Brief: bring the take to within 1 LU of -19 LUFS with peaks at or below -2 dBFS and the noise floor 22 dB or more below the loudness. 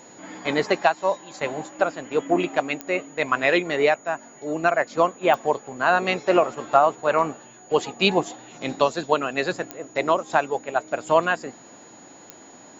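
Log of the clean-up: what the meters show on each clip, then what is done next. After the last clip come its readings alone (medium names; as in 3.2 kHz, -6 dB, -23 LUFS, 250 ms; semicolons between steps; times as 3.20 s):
clicks found 4; steady tone 6.8 kHz; tone level -49 dBFS; loudness -23.0 LUFS; peak level -4.0 dBFS; loudness target -19.0 LUFS
-> de-click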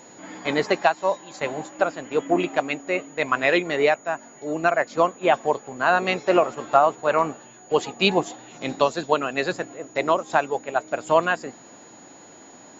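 clicks found 0; steady tone 6.8 kHz; tone level -49 dBFS
-> band-stop 6.8 kHz, Q 30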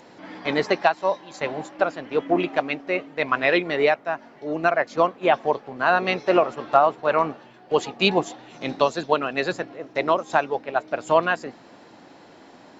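steady tone not found; loudness -23.0 LUFS; peak level -3.5 dBFS; loudness target -19.0 LUFS
-> trim +4 dB; peak limiter -2 dBFS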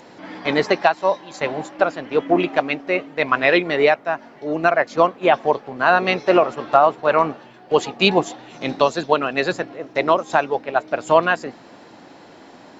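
loudness -19.5 LUFS; peak level -2.0 dBFS; noise floor -45 dBFS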